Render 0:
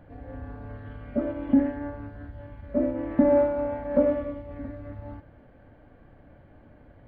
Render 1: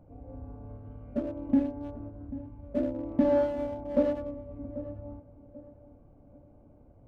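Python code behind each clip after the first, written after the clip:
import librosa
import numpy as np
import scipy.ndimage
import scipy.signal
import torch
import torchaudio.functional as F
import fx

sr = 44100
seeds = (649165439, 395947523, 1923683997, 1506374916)

y = fx.wiener(x, sr, points=25)
y = fx.echo_filtered(y, sr, ms=789, feedback_pct=38, hz=990.0, wet_db=-15)
y = y * librosa.db_to_amplitude(-4.0)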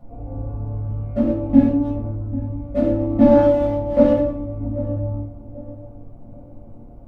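y = fx.room_shoebox(x, sr, seeds[0], volume_m3=380.0, walls='furnished', distance_m=6.6)
y = y * librosa.db_to_amplitude(1.0)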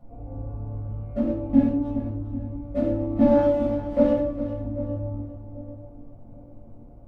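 y = fx.echo_feedback(x, sr, ms=405, feedback_pct=27, wet_db=-12.5)
y = y * librosa.db_to_amplitude(-5.5)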